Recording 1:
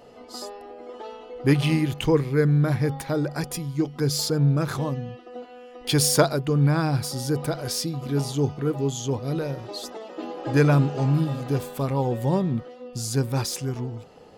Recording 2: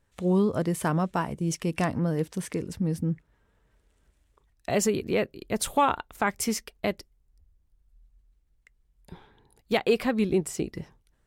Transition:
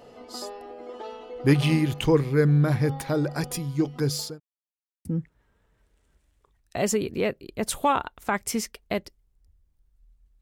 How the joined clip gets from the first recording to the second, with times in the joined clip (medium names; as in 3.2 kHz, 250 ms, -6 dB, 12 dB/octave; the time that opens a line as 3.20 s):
recording 1
3.85–4.40 s: fade out equal-power
4.40–5.05 s: mute
5.05 s: go over to recording 2 from 2.98 s